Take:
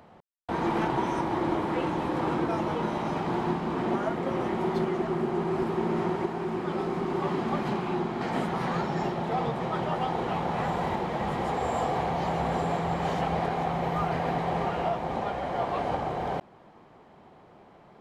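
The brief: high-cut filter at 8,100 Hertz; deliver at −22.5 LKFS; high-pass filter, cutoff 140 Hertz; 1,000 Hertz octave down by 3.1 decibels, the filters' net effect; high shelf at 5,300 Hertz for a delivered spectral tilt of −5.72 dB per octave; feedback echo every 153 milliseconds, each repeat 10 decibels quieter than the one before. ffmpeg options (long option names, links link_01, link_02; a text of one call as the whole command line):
ffmpeg -i in.wav -af "highpass=140,lowpass=8100,equalizer=frequency=1000:width_type=o:gain=-4,highshelf=frequency=5300:gain=-8,aecho=1:1:153|306|459|612:0.316|0.101|0.0324|0.0104,volume=8dB" out.wav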